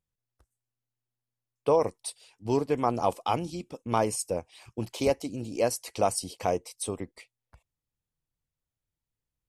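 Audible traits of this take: noise floor -90 dBFS; spectral tilt -4.5 dB/oct

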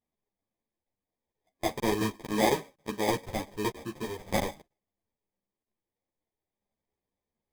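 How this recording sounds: aliases and images of a low sample rate 1400 Hz, jitter 0%; a shimmering, thickened sound

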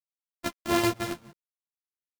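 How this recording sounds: a buzz of ramps at a fixed pitch in blocks of 128 samples; tremolo saw down 3.6 Hz, depth 70%; a quantiser's noise floor 10-bit, dither none; a shimmering, thickened sound

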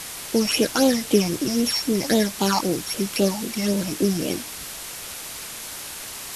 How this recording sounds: a buzz of ramps at a fixed pitch in blocks of 8 samples; phasing stages 8, 3.8 Hz, lowest notch 420–1700 Hz; a quantiser's noise floor 6-bit, dither triangular; Vorbis

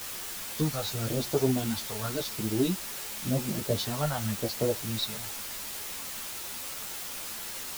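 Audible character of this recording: phasing stages 2, 0.92 Hz, lowest notch 320–2500 Hz; a quantiser's noise floor 6-bit, dither triangular; a shimmering, thickened sound

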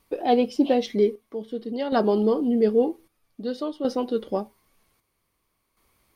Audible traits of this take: chopped level 0.52 Hz, depth 60%, duty 60%

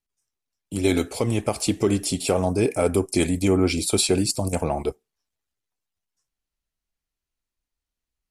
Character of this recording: noise floor -87 dBFS; spectral tilt -4.5 dB/oct

